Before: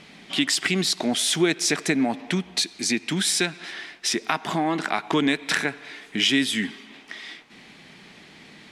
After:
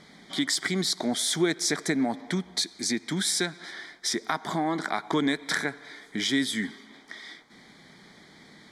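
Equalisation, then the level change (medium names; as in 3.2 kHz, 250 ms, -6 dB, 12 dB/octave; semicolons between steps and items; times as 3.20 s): Butterworth band-stop 2.7 kHz, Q 2.7; -3.5 dB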